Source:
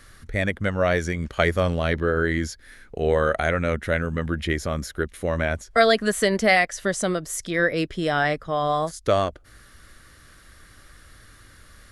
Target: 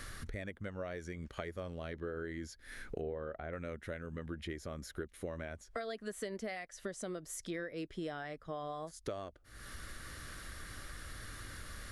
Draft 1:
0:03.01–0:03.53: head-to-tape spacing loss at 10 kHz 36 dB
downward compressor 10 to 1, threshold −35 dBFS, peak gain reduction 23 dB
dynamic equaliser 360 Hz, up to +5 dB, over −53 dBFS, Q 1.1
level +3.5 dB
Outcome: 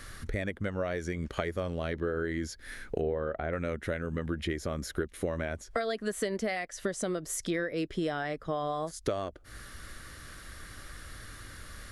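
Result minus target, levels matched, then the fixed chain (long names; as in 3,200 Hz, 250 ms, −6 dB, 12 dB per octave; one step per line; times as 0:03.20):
downward compressor: peak gain reduction −9 dB
0:03.01–0:03.53: head-to-tape spacing loss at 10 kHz 36 dB
downward compressor 10 to 1, threshold −45 dBFS, peak gain reduction 32 dB
dynamic equaliser 360 Hz, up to +5 dB, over −53 dBFS, Q 1.1
level +3.5 dB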